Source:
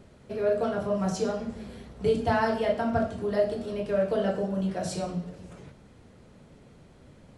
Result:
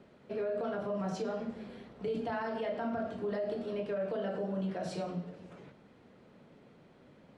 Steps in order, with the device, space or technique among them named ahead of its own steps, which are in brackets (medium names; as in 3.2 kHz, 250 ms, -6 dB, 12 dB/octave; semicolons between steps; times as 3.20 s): DJ mixer with the lows and highs turned down (three-band isolator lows -16 dB, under 150 Hz, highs -14 dB, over 4.3 kHz; peak limiter -24.5 dBFS, peak gain reduction 11.5 dB); trim -3 dB